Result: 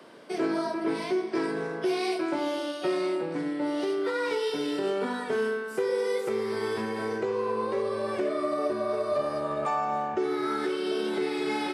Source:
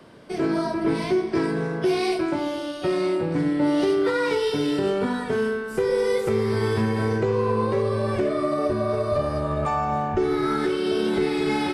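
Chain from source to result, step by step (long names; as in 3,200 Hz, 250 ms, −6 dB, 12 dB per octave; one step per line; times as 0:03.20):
speech leveller within 5 dB 0.5 s
high-pass filter 290 Hz 12 dB per octave
level −4 dB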